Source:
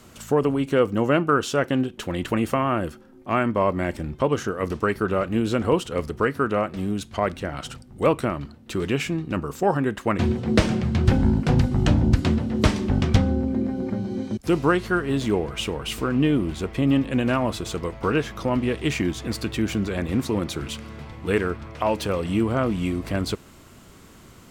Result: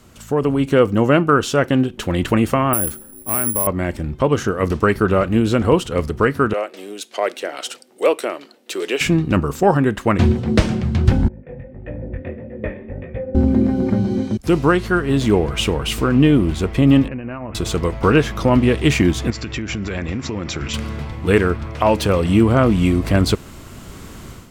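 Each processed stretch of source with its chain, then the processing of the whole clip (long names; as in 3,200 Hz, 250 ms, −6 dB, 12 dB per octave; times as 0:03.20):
0:02.73–0:03.67: downward compressor 2 to 1, threshold −29 dBFS + bad sample-rate conversion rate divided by 4×, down none, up zero stuff
0:06.53–0:09.01: high-pass filter 410 Hz 24 dB per octave + parametric band 1,100 Hz −9 dB 1.5 octaves
0:11.28–0:13.35: formant resonators in series e + chorus effect 1.6 Hz, delay 16.5 ms, depth 6.4 ms
0:17.08–0:17.55: noise gate −22 dBFS, range −6 dB + Butterworth low-pass 2,800 Hz 96 dB per octave + downward compressor 16 to 1, threshold −31 dBFS
0:19.30–0:20.74: downward compressor 10 to 1, threshold −26 dBFS + Chebyshev low-pass with heavy ripple 7,500 Hz, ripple 6 dB
whole clip: low-shelf EQ 110 Hz +6.5 dB; automatic gain control; level −1 dB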